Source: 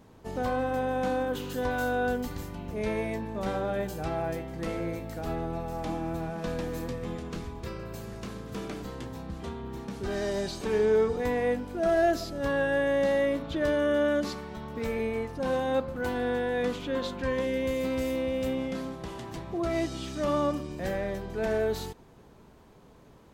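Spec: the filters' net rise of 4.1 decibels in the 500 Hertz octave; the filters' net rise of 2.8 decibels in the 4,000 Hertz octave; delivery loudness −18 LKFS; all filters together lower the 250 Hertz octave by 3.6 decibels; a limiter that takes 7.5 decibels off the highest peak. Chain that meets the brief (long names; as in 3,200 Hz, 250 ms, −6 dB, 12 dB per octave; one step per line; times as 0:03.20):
parametric band 250 Hz −6.5 dB
parametric band 500 Hz +6 dB
parametric band 4,000 Hz +3.5 dB
level +12 dB
brickwall limiter −9 dBFS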